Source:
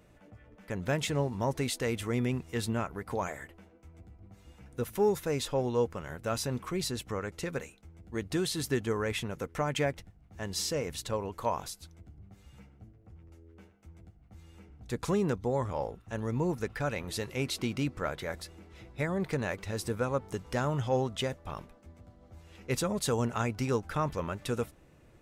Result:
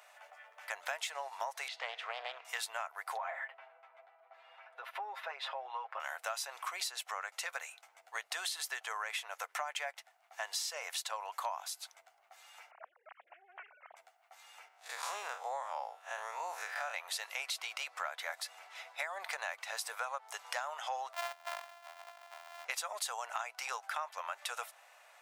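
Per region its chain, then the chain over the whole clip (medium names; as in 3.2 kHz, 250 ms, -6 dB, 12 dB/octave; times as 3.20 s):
1.68–2.45 s: distance through air 250 m + feedback comb 51 Hz, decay 1.6 s, mix 40% + loudspeaker Doppler distortion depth 0.48 ms
3.17–6.00 s: distance through air 410 m + comb 7.5 ms, depth 79% + compression, threshold -34 dBFS
12.71–13.96 s: formants replaced by sine waves + loudspeaker Doppler distortion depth 0.3 ms
14.68–16.94 s: spectral blur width 89 ms + high-pass 220 Hz
21.13–22.65 s: sorted samples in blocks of 128 samples + peaking EQ 10 kHz -7 dB 2.3 oct
whole clip: elliptic high-pass 690 Hz, stop band 60 dB; compression 6:1, threshold -45 dBFS; trim +9 dB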